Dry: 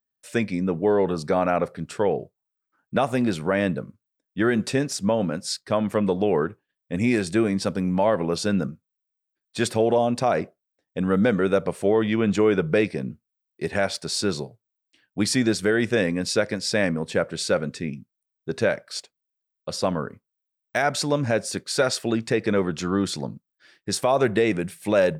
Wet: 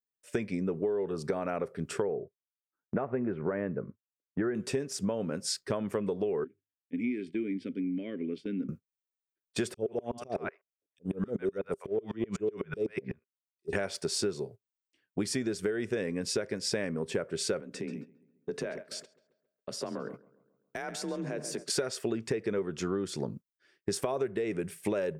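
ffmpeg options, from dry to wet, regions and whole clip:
ffmpeg -i in.wav -filter_complex "[0:a]asettb=1/sr,asplit=3[link_01][link_02][link_03];[link_01]atrim=end=2.024[link_04];[link_02]atrim=start=2.02:end=4.55,asetpts=PTS-STARTPTS,afade=type=in:duration=0.004:curve=qsin,afade=type=out:start_time=2.526:duration=0.004:curve=qsin,lowpass=frequency=1900:width=0.5412,lowpass=frequency=1900:width=1.3066,agate=range=-10dB:threshold=-48dB:ratio=16:release=100:detection=peak[link_05];[link_03]atrim=start=4.546[link_06];[link_04][link_05]acrossfade=duration=0.004:curve1=hsin:curve2=qsin[link_07];[link_07][link_06]acrossfade=duration=0.004:curve1=qsin:curve2=hsin,asettb=1/sr,asplit=3[link_08][link_09][link_10];[link_08]atrim=end=6.444[link_11];[link_09]atrim=start=6.44:end=8.69,asetpts=PTS-STARTPTS,afade=type=in:duration=0.004:curve=qsin,afade=type=out:start_time=2.246:duration=0.004:curve=qsin,asplit=3[link_12][link_13][link_14];[link_12]bandpass=frequency=270:width_type=q:width=8,volume=0dB[link_15];[link_13]bandpass=frequency=2290:width_type=q:width=8,volume=-6dB[link_16];[link_14]bandpass=frequency=3010:width_type=q:width=8,volume=-9dB[link_17];[link_15][link_16][link_17]amix=inputs=3:normalize=0,equalizer=frequency=6400:width=2.2:gain=-8,bandreject=frequency=50:width_type=h:width=6,bandreject=frequency=100:width_type=h:width=6,bandreject=frequency=150:width_type=h:width=6[link_18];[link_10]atrim=start=8.686[link_19];[link_11][link_18]acrossfade=duration=0.004:curve1=hsin:curve2=qsin[link_20];[link_20][link_19]acrossfade=duration=0.004:curve1=qsin:curve2=hsin,asettb=1/sr,asplit=3[link_21][link_22][link_23];[link_21]atrim=end=9.744[link_24];[link_22]atrim=start=9.74:end=13.73,asetpts=PTS-STARTPTS,afade=type=in:duration=0.004:curve=qsin,afade=type=out:start_time=3.986:duration=0.004:curve=qsin,acrossover=split=790|3500[link_25][link_26][link_27];[link_25]adelay=30[link_28];[link_26]adelay=140[link_29];[link_28][link_29][link_27]amix=inputs=3:normalize=0,atrim=end_sample=175959,aeval=exprs='val(0)*pow(10,-34*if(lt(mod(-8*n/s,1),2*abs(-8)/1000),1-mod(-8*n/s,1)/(2*abs(-8)/1000),(mod(-8*n/s,1)-2*abs(-8)/1000)/(1-2*abs(-8)/1000))/20)':channel_layout=same[link_30];[link_23]atrim=start=13.726[link_31];[link_24][link_30]acrossfade=duration=0.004:curve1=hsin:curve2=qsin[link_32];[link_32][link_31]acrossfade=duration=0.004:curve1=qsin:curve2=hsin,asettb=1/sr,asplit=3[link_33][link_34][link_35];[link_33]atrim=end=17.604[link_36];[link_34]atrim=start=17.6:end=21.7,asetpts=PTS-STARTPTS,afade=type=in:duration=0.004:curve=qsin,afade=type=out:start_time=4.096:duration=0.004:curve=qsin,acompressor=threshold=-35dB:ratio=5:attack=3.2:release=140:knee=1:detection=peak,afreqshift=34,asplit=2[link_37][link_38];[link_38]adelay=136,lowpass=frequency=2400:poles=1,volume=-10dB,asplit=2[link_39][link_40];[link_40]adelay=136,lowpass=frequency=2400:poles=1,volume=0.54,asplit=2[link_41][link_42];[link_42]adelay=136,lowpass=frequency=2400:poles=1,volume=0.54,asplit=2[link_43][link_44];[link_44]adelay=136,lowpass=frequency=2400:poles=1,volume=0.54,asplit=2[link_45][link_46];[link_46]adelay=136,lowpass=frequency=2400:poles=1,volume=0.54,asplit=2[link_47][link_48];[link_48]adelay=136,lowpass=frequency=2400:poles=1,volume=0.54[link_49];[link_37][link_39][link_41][link_43][link_45][link_47][link_49]amix=inputs=7:normalize=0,atrim=end_sample=180810[link_50];[link_35]atrim=start=21.696[link_51];[link_36][link_50]acrossfade=duration=0.004:curve1=hsin:curve2=qsin[link_52];[link_52][link_51]acrossfade=duration=0.004:curve1=qsin:curve2=hsin,agate=range=-12dB:threshold=-42dB:ratio=16:detection=peak,equalizer=frequency=400:width_type=o:width=0.33:gain=10,equalizer=frequency=800:width_type=o:width=0.33:gain=-3,equalizer=frequency=4000:width_type=o:width=0.33:gain=-6,acompressor=threshold=-28dB:ratio=12" out.wav

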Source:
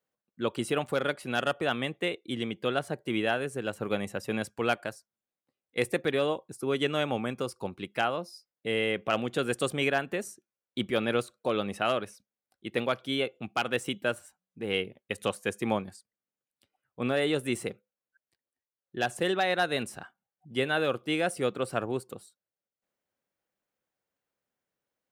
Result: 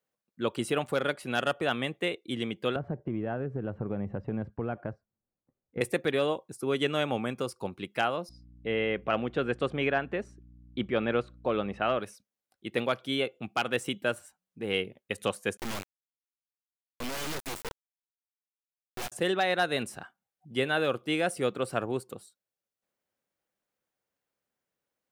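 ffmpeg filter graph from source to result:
ffmpeg -i in.wav -filter_complex "[0:a]asettb=1/sr,asplit=3[link_01][link_02][link_03];[link_01]atrim=end=2.764[link_04];[link_02]atrim=start=2.76:end=5.81,asetpts=PTS-STARTPTS,afade=type=in:duration=0.004:curve=qsin,afade=type=out:start_time=3.046:duration=0.004:curve=qsin,lowpass=1500,aemphasis=mode=reproduction:type=riaa,acompressor=threshold=-29dB:ratio=4:attack=3.2:release=140:knee=1:detection=peak[link_05];[link_03]atrim=start=5.806[link_06];[link_04][link_05]acrossfade=duration=0.004:curve1=hsin:curve2=qsin[link_07];[link_07][link_06]acrossfade=duration=0.004:curve1=qsin:curve2=hsin,asettb=1/sr,asplit=3[link_08][link_09][link_10];[link_08]atrim=end=8.294[link_11];[link_09]atrim=start=8.29:end=11.99,asetpts=PTS-STARTPTS,afade=type=in:duration=0.004:curve=qsin,afade=type=out:start_time=3.696:duration=0.004:curve=qsin,lowpass=2600,aeval=exprs='val(0)+0.00251*(sin(2*PI*60*n/s)+sin(2*PI*2*60*n/s)/2+sin(2*PI*3*60*n/s)/3+sin(2*PI*4*60*n/s)/4+sin(2*PI*5*60*n/s)/5)':channel_layout=same[link_12];[link_10]atrim=start=11.986[link_13];[link_11][link_12]acrossfade=duration=0.004:curve1=hsin:curve2=qsin[link_14];[link_14][link_13]acrossfade=duration=0.004:curve1=qsin:curve2=hsin,asettb=1/sr,asplit=3[link_15][link_16][link_17];[link_15]atrim=end=15.574[link_18];[link_16]atrim=start=15.57:end=19.12,asetpts=PTS-STARTPTS,afade=type=in:duration=0.004:curve=qsin,afade=type=out:start_time=3.546:duration=0.004:curve=qsin,acrusher=bits=3:dc=4:mix=0:aa=0.000001,aeval=exprs='(mod(25.1*val(0)+1,2)-1)/25.1':channel_layout=same[link_19];[link_17]atrim=start=19.116[link_20];[link_18][link_19]acrossfade=duration=0.004:curve1=hsin:curve2=qsin[link_21];[link_21][link_20]acrossfade=duration=0.004:curve1=qsin:curve2=hsin" out.wav

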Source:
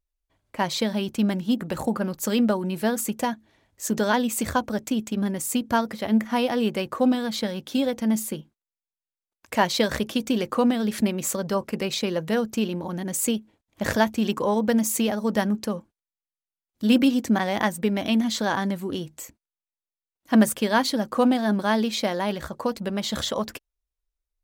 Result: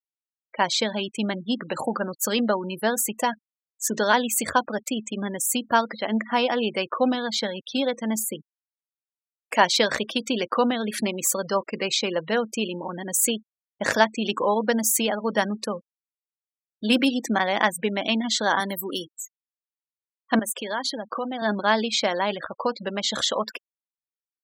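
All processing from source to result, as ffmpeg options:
ffmpeg -i in.wav -filter_complex "[0:a]asettb=1/sr,asplit=3[link_01][link_02][link_03];[link_01]atrim=end=18.604[link_04];[link_02]atrim=start=18.6:end=19.11,asetpts=PTS-STARTPTS,afade=type=in:duration=0.004:curve=qsin,afade=type=out:start_time=0.506:duration=0.004:curve=qsin,highpass=frequency=170:width=0.5412,highpass=frequency=170:width=1.3066,aemphasis=mode=production:type=50fm,acrusher=bits=7:mode=log:mix=0:aa=0.000001[link_05];[link_03]atrim=start=19.106[link_06];[link_04][link_05]acrossfade=duration=0.004:curve1=hsin:curve2=qsin[link_07];[link_07][link_06]acrossfade=duration=0.004:curve1=qsin:curve2=hsin,asettb=1/sr,asplit=3[link_08][link_09][link_10];[link_08]atrim=end=20.394[link_11];[link_09]atrim=start=20.39:end=21.42,asetpts=PTS-STARTPTS,afade=type=in:duration=0.004:curve=qsin,afade=type=out:start_time=1.026:duration=0.004:curve=qsin,highpass=160,acompressor=threshold=-28dB:ratio=3:attack=3.2:release=140:knee=1:detection=peak[link_12];[link_10]atrim=start=21.416[link_13];[link_11][link_12]acrossfade=duration=0.004:curve1=hsin:curve2=qsin[link_14];[link_14][link_13]acrossfade=duration=0.004:curve1=qsin:curve2=hsin,highpass=frequency=620:poles=1,afftfilt=real='re*gte(hypot(re,im),0.0158)':imag='im*gte(hypot(re,im),0.0158)':win_size=1024:overlap=0.75,volume=5dB" out.wav

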